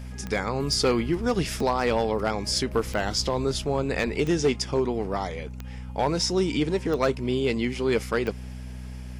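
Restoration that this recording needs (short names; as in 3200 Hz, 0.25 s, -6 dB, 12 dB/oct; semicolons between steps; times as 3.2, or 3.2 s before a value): clip repair -15 dBFS; de-click; de-hum 62.7 Hz, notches 4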